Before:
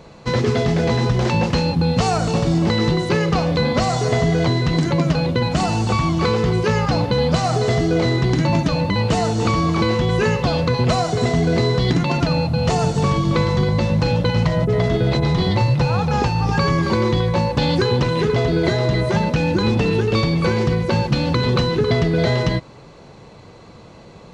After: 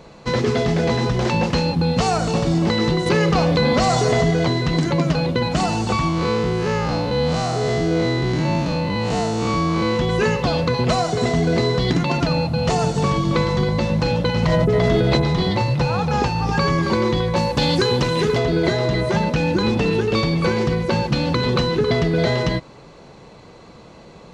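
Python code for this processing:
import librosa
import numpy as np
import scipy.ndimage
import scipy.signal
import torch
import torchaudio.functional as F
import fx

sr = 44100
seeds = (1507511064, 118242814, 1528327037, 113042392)

y = fx.env_flatten(x, sr, amount_pct=70, at=(3.06, 4.31))
y = fx.spec_blur(y, sr, span_ms=127.0, at=(6.08, 9.95), fade=0.02)
y = fx.env_flatten(y, sr, amount_pct=100, at=(14.43, 15.22))
y = fx.high_shelf(y, sr, hz=5700.0, db=10.5, at=(17.36, 18.38))
y = fx.peak_eq(y, sr, hz=100.0, db=-6.0, octaves=0.76)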